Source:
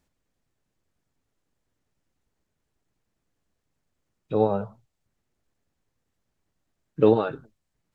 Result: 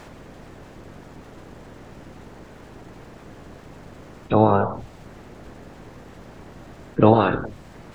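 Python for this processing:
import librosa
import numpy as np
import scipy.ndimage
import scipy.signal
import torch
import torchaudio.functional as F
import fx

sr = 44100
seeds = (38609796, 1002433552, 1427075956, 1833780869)

y = fx.spec_clip(x, sr, under_db=19)
y = fx.lowpass(y, sr, hz=1000.0, slope=6)
y = fx.env_flatten(y, sr, amount_pct=50)
y = F.gain(torch.from_numpy(y), 4.0).numpy()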